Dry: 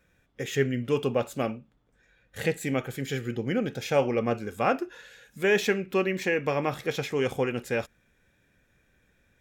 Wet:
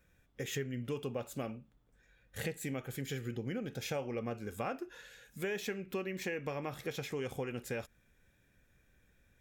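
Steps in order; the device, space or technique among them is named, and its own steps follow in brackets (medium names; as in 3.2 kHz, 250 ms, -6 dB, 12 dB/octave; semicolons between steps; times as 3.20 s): ASMR close-microphone chain (bass shelf 100 Hz +7.5 dB; compression 4:1, threshold -30 dBFS, peak gain reduction 11 dB; treble shelf 8.3 kHz +7.5 dB); trim -5.5 dB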